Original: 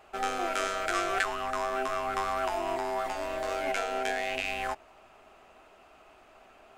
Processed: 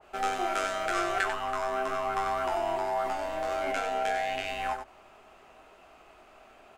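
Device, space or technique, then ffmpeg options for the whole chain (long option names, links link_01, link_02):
slapback doubling: -filter_complex "[0:a]asplit=3[link_01][link_02][link_03];[link_02]adelay=22,volume=-8dB[link_04];[link_03]adelay=94,volume=-7dB[link_05];[link_01][link_04][link_05]amix=inputs=3:normalize=0,adynamicequalizer=threshold=0.01:dfrequency=1900:dqfactor=0.7:tfrequency=1900:tqfactor=0.7:attack=5:release=100:ratio=0.375:range=2:mode=cutabove:tftype=highshelf"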